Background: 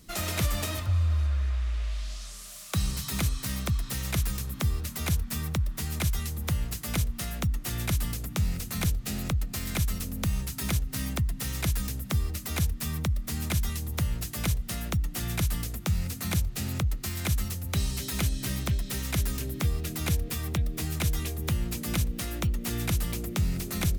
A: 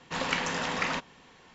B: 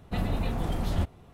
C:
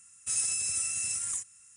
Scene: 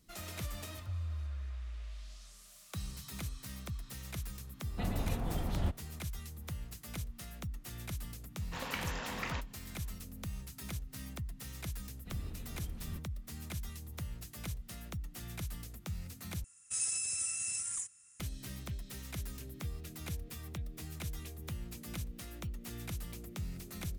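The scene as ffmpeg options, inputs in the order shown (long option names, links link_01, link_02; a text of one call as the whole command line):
ffmpeg -i bed.wav -i cue0.wav -i cue1.wav -i cue2.wav -filter_complex "[2:a]asplit=2[link_01][link_02];[0:a]volume=-13.5dB[link_03];[link_02]equalizer=frequency=770:width_type=o:width=1.5:gain=-12.5[link_04];[link_03]asplit=2[link_05][link_06];[link_05]atrim=end=16.444[link_07];[3:a]atrim=end=1.76,asetpts=PTS-STARTPTS,volume=-5dB[link_08];[link_06]atrim=start=18.196[link_09];[link_01]atrim=end=1.33,asetpts=PTS-STARTPTS,volume=-6.5dB,afade=type=in:duration=0.004:curve=hsin,afade=type=out:start_time=1.326:duration=0.004:curve=hsin,adelay=4660[link_10];[1:a]atrim=end=1.54,asetpts=PTS-STARTPTS,volume=-10dB,afade=type=in:duration=0.004:curve=hsin,afade=type=out:start_time=1.536:duration=0.004:curve=hsin,adelay=8410[link_11];[link_04]atrim=end=1.33,asetpts=PTS-STARTPTS,volume=-16dB,afade=type=in:duration=0.004:curve=hsin,afade=type=out:start_time=1.326:duration=0.004:curve=hsin,adelay=11940[link_12];[link_07][link_08]acrossfade=duration=0.004:curve1=hsin:curve2=hsin[link_13];[link_13][link_09]acrossfade=duration=0.004:curve1=hsin:curve2=hsin[link_14];[link_14][link_10][link_11][link_12]amix=inputs=4:normalize=0" out.wav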